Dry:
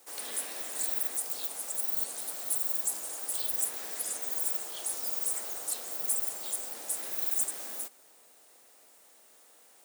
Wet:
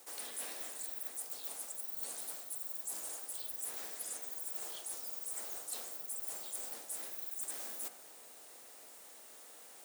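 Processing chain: de-hum 99.92 Hz, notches 29; reverse; compression 6:1, threshold -44 dBFS, peak gain reduction 18 dB; reverse; trim +4 dB

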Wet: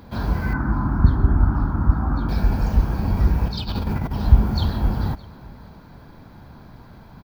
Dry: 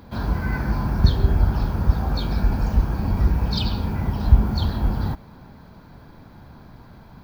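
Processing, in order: 0.53–2.29 s: FFT filter 200 Hz 0 dB, 290 Hz +7 dB, 450 Hz -10 dB, 1.3 kHz +6 dB, 2.6 kHz -18 dB; 3.47–4.13 s: compressor with a negative ratio -25 dBFS, ratio -0.5; on a send: delay 614 ms -23 dB; on the sum: trim +1 dB

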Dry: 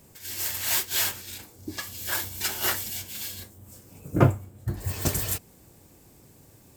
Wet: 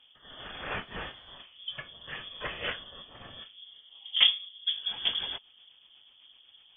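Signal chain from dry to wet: rotary cabinet horn 1.1 Hz, later 8 Hz, at 4.30 s; frequency inversion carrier 3.4 kHz; 0.80–1.32 s: band noise 520–2600 Hz -64 dBFS; trim -1.5 dB

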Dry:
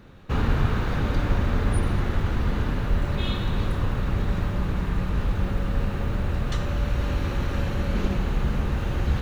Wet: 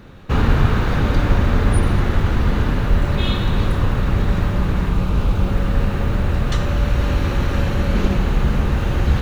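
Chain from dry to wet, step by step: 4.89–5.52 s: peaking EQ 1.8 kHz -8 dB 0.34 oct; trim +7 dB

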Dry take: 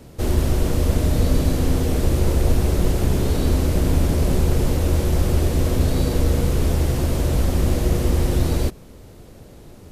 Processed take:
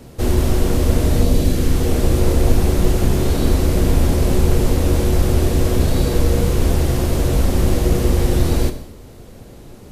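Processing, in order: 1.23–1.79 s: peaking EQ 1.8 kHz -> 540 Hz -7 dB 1 oct; gated-style reverb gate 280 ms falling, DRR 8.5 dB; trim +3 dB

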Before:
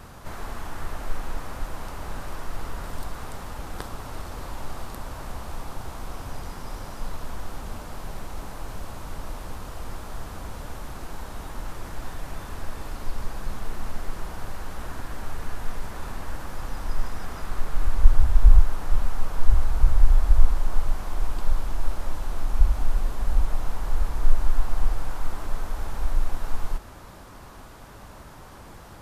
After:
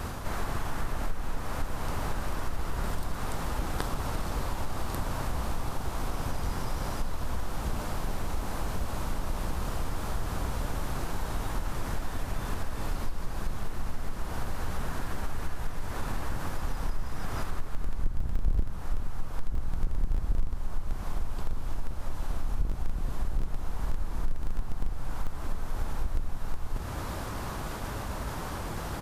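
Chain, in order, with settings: octave divider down 1 oct, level -1 dB; in parallel at -6.5 dB: Schmitt trigger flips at -11 dBFS; on the sum: compression 4:1, threshold -30 dBFS, peak gain reduction 22.5 dB; frequency-shifting echo 83 ms, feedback 49%, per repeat +55 Hz, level -21 dB; reverse; upward compressor, threshold -32 dBFS; reverse; trim +4.5 dB

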